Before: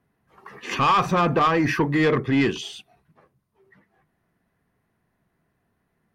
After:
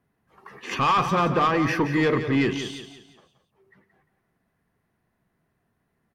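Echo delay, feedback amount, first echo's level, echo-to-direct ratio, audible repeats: 175 ms, 36%, −10.0 dB, −9.5 dB, 3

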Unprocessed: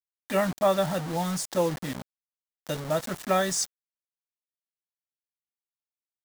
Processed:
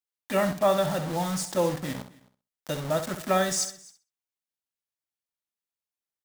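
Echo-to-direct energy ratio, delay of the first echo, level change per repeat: −9.0 dB, 64 ms, repeats not evenly spaced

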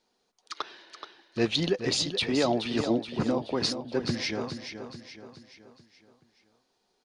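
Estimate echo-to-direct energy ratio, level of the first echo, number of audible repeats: −8.0 dB, −9.0 dB, 4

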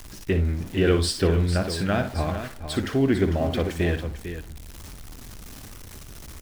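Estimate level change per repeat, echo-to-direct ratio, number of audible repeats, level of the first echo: repeats not evenly spaced, −6.5 dB, 2, −9.5 dB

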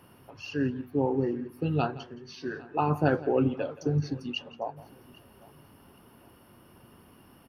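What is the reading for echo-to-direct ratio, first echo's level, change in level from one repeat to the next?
−17.0 dB, −18.5 dB, repeats not evenly spaced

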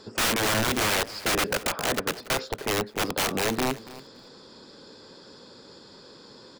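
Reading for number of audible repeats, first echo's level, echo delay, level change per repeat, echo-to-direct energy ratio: 2, −18.0 dB, 283 ms, −16.0 dB, −18.0 dB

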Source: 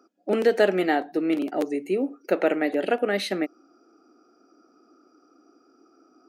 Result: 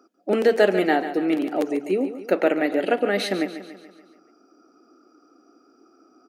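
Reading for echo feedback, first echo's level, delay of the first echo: 53%, −12.0 dB, 143 ms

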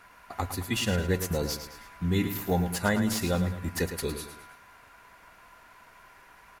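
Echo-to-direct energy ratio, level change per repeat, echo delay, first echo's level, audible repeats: −9.0 dB, −7.5 dB, 108 ms, −10.0 dB, 3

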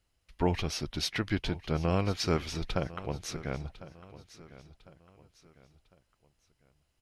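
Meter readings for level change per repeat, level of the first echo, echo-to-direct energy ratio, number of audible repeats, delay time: −8.0 dB, −17.0 dB, −16.5 dB, 3, 1,052 ms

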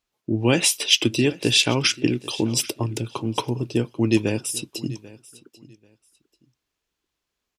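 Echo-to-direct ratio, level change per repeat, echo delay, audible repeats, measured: −20.0 dB, −13.5 dB, 789 ms, 2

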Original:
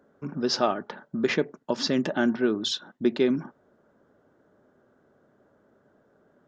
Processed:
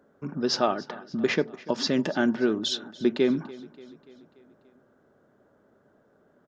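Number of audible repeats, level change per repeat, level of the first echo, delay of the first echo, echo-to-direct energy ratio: 4, −5.0 dB, −20.0 dB, 290 ms, −18.5 dB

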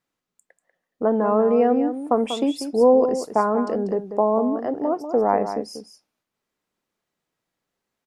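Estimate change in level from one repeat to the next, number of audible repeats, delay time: repeats not evenly spaced, 1, 191 ms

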